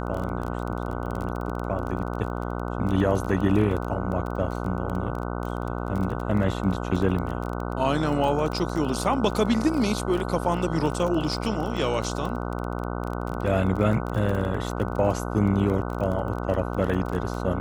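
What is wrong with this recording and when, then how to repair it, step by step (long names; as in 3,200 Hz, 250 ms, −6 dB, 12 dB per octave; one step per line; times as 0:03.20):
mains buzz 60 Hz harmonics 25 −30 dBFS
surface crackle 20 per second −29 dBFS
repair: click removal
hum removal 60 Hz, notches 25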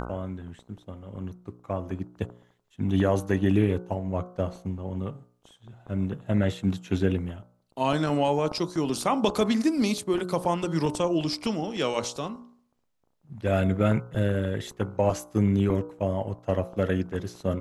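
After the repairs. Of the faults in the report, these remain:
none of them is left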